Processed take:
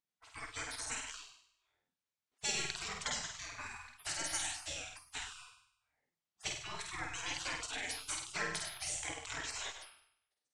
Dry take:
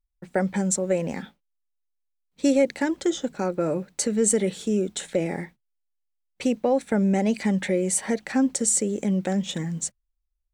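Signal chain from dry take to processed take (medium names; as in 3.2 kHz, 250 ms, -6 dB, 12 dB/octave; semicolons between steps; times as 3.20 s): low-pass 6.8 kHz 12 dB/octave; peaking EQ 93 Hz +8 dB 0.27 oct; flutter echo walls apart 8.5 m, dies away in 0.71 s; spectral gate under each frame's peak -30 dB weak; simulated room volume 450 m³, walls furnished, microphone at 0.38 m; trim +2 dB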